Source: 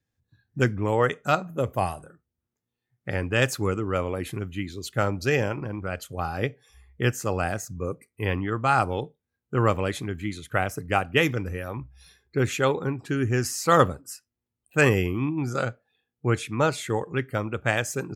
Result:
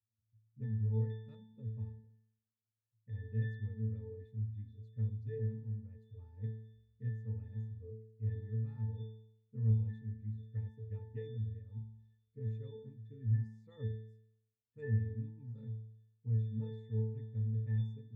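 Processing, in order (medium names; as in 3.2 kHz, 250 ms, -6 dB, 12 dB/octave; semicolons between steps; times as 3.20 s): amplifier tone stack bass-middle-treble 10-0-1; pitch-class resonator A, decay 0.75 s; trim +16.5 dB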